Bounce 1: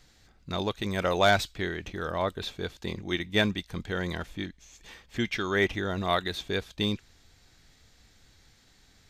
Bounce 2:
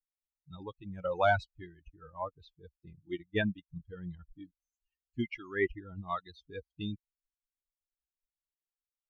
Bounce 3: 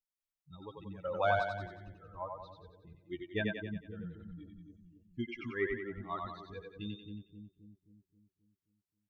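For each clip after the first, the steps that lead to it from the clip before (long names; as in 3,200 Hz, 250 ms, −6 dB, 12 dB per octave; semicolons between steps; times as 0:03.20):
spectral dynamics exaggerated over time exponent 3; low-pass filter 2,100 Hz 12 dB per octave
echo with a time of its own for lows and highs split 320 Hz, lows 266 ms, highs 91 ms, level −3.5 dB; level −4.5 dB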